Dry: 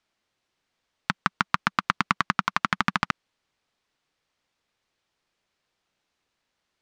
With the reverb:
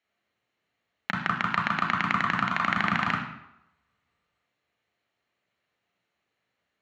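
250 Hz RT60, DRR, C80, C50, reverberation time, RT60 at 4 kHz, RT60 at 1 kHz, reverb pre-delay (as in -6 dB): 0.75 s, 0.0 dB, 7.5 dB, 4.0 dB, 0.85 s, 0.65 s, 0.85 s, 33 ms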